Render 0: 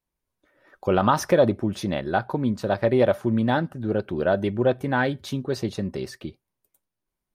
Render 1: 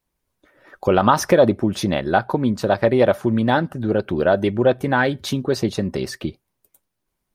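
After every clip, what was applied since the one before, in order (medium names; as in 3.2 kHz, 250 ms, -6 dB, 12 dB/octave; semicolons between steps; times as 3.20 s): harmonic-percussive split percussive +4 dB; in parallel at -1 dB: compression, threshold -26 dBFS, peak gain reduction 15 dB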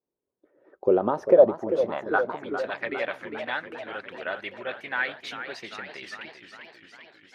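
band-pass sweep 410 Hz -> 2.2 kHz, 1.06–2.68 s; modulated delay 399 ms, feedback 68%, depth 158 cents, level -10 dB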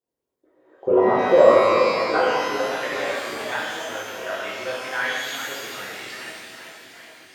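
pitch-shifted reverb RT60 1.4 s, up +12 st, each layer -8 dB, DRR -6.5 dB; trim -3 dB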